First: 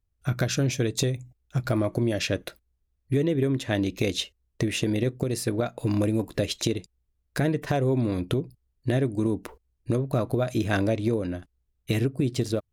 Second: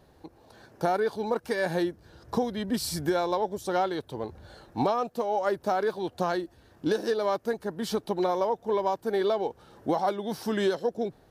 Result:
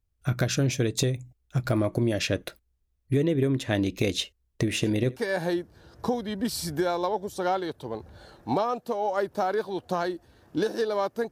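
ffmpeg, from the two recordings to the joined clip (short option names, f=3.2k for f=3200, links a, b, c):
-filter_complex "[0:a]asettb=1/sr,asplit=3[a][b][c];[a]atrim=end=4.634[d];[b]atrim=start=4.63:end=5.21,asetpts=PTS-STARTPTS,afade=t=in:d=0.004:c=qsin,afade=t=out:st=0.576:d=0.004:c=qsin,aecho=1:1:78:0.0944,atrim=end_sample=25578[e];[c]atrim=start=5.206[f];[d][e]acrossfade=d=0.004:c1=hsin:c2=qsin[g];[g][f]acrossfade=d=0.004:c1=qsin:c2=hsin,apad=whole_dur=11.31,atrim=end=11.31,atrim=end=5.21,asetpts=PTS-STARTPTS[h];[1:a]atrim=start=1.4:end=7.6,asetpts=PTS-STARTPTS[i];[h][i]acrossfade=d=0.1:c1=tri:c2=tri"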